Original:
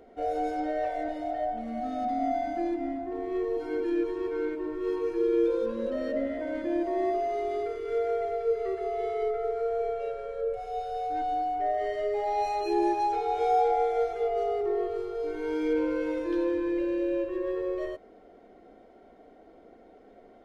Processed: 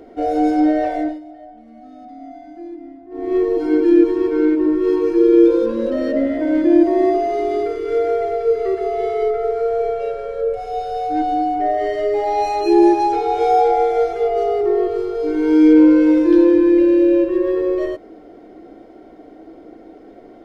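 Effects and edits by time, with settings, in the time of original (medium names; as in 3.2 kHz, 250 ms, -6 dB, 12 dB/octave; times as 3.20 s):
0.95–3.34 s: dip -19 dB, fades 0.25 s
whole clip: graphic EQ with 31 bands 125 Hz +6 dB, 315 Hz +12 dB, 5 kHz +4 dB; trim +9 dB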